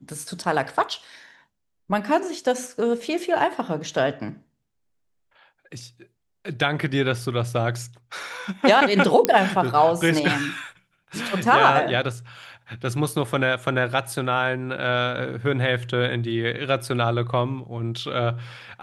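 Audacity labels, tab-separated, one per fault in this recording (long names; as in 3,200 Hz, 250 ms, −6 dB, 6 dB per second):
9.250000	9.250000	click −2 dBFS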